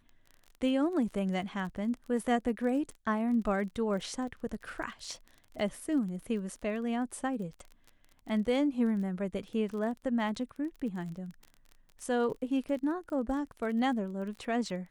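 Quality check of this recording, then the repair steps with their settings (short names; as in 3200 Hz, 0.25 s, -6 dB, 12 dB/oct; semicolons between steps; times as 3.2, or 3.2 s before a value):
crackle 26/s -40 dBFS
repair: de-click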